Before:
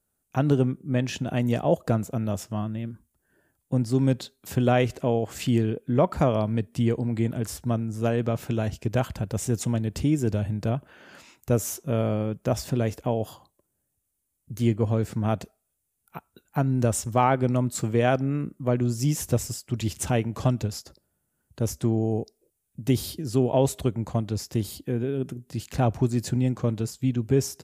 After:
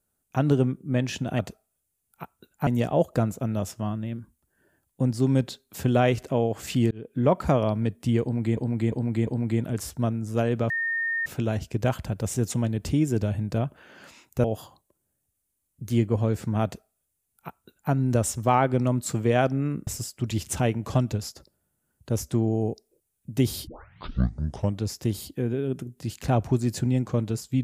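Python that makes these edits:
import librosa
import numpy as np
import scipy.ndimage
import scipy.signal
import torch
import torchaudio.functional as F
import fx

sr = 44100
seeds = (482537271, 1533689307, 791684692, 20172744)

y = fx.edit(x, sr, fx.fade_in_span(start_s=5.63, length_s=0.28),
    fx.repeat(start_s=6.94, length_s=0.35, count=4),
    fx.insert_tone(at_s=8.37, length_s=0.56, hz=1830.0, db=-24.0),
    fx.cut(start_s=11.55, length_s=1.58),
    fx.duplicate(start_s=15.33, length_s=1.28, to_s=1.39),
    fx.cut(start_s=18.56, length_s=0.81),
    fx.tape_start(start_s=23.17, length_s=1.13), tone=tone)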